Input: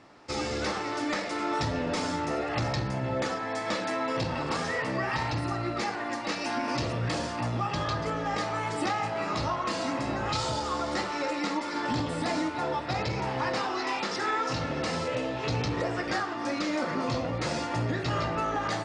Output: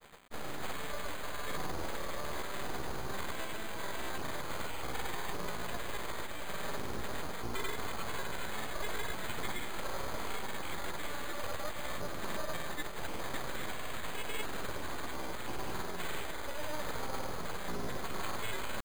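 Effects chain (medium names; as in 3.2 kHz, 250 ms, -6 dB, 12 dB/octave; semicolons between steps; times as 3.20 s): ten-band graphic EQ 125 Hz -7 dB, 500 Hz -11 dB, 2 kHz -7 dB, 8 kHz -8 dB; reverse; upward compressor, threshold -31 dBFS; reverse; full-wave rectifier; word length cut 8-bit, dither none; granulator 100 ms, grains 20 per s, pitch spread up and down by 0 st; careless resampling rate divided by 8×, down filtered, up hold; trim +1 dB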